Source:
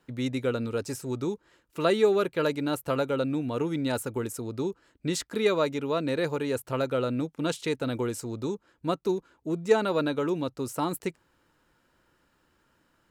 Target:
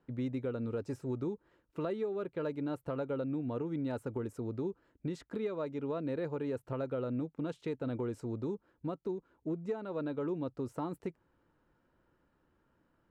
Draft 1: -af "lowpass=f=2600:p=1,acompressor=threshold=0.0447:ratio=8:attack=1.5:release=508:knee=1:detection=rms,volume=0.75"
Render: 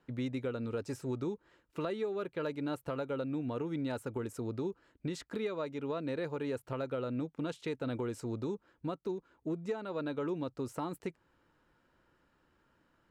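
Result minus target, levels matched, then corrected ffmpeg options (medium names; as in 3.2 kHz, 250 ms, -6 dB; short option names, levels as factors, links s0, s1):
2 kHz band +4.5 dB
-af "lowpass=f=810:p=1,acompressor=threshold=0.0447:ratio=8:attack=1.5:release=508:knee=1:detection=rms,volume=0.75"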